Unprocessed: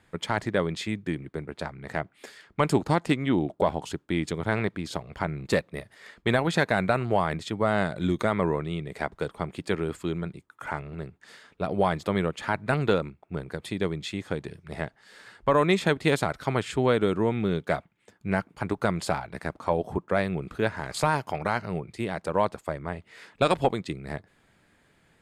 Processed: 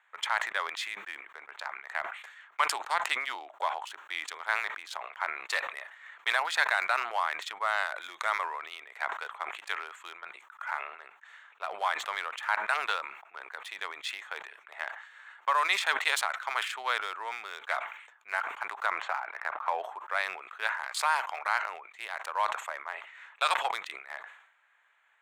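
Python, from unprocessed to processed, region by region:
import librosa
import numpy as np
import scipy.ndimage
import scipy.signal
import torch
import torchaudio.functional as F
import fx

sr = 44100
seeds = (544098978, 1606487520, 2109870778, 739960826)

y = fx.chain(x, sr, fx.lowpass(hz=2300.0, slope=12),
    fx.band_squash(depth_pct=70), at=(18.86, 19.84))
y = fx.wiener(y, sr, points=9)
y = scipy.signal.sosfilt(scipy.signal.butter(4, 940.0, 'highpass', fs=sr, output='sos'), y)
y = fx.sustainer(y, sr, db_per_s=77.0)
y = F.gain(torch.from_numpy(y), 1.5).numpy()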